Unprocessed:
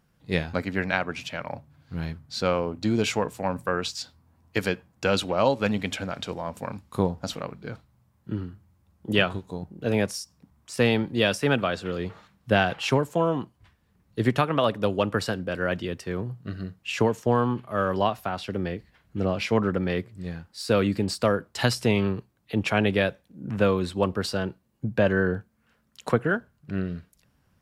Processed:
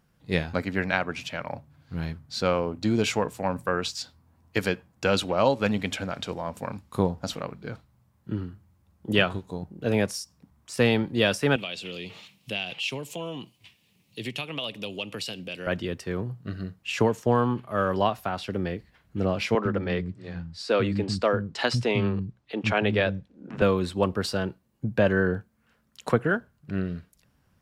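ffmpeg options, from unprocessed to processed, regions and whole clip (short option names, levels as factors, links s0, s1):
-filter_complex "[0:a]asettb=1/sr,asplit=3[s0][s1][s2];[s0]atrim=end=11.564[s3];[s1]atrim=start=11.56:end=15.67,asetpts=PTS-STARTPTS,afade=t=in:d=0.004:c=qsin,afade=t=out:st=4.106:d=0.004:c=qsin,highpass=f=110:w=0.5412,highpass=f=110:w=1.3066,highshelf=f=2000:t=q:w=3:g=9.5,acompressor=threshold=0.0112:ratio=2:attack=3.2:release=140:knee=1:detection=peak[s4];[s2]atrim=start=15.666[s5];[s3][s4]acrossfade=d=0.004:c1=hsin:c2=qsin[s6];[s6][s5]acrossfade=d=0.004:c1=qsin:c2=hsin,asettb=1/sr,asplit=3[s7][s8][s9];[s7]atrim=end=19.554[s10];[s8]atrim=start=19.55:end=23.62,asetpts=PTS-STARTPTS,afade=t=in:d=0.004:c=qsin,afade=t=out:st=4.066:d=0.004:c=qsin,lowpass=5600,acrossover=split=240[s11][s12];[s11]adelay=100[s13];[s13][s12]amix=inputs=2:normalize=0,atrim=end_sample=179487[s14];[s9]atrim=start=23.616[s15];[s10][s14]acrossfade=d=0.004:c1=hsin:c2=qsin[s16];[s16][s15]acrossfade=d=0.004:c1=qsin:c2=hsin"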